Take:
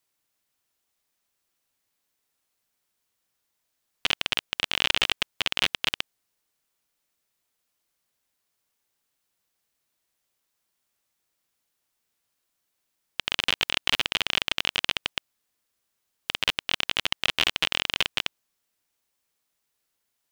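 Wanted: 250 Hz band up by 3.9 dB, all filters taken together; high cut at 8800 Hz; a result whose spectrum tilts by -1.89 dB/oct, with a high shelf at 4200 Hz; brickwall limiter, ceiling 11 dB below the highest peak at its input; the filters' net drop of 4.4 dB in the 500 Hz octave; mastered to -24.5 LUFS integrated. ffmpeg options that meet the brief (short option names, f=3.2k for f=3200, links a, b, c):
-af "lowpass=8.8k,equalizer=f=250:t=o:g=7.5,equalizer=f=500:t=o:g=-8,highshelf=f=4.2k:g=-7,volume=14dB,alimiter=limit=-3.5dB:level=0:latency=1"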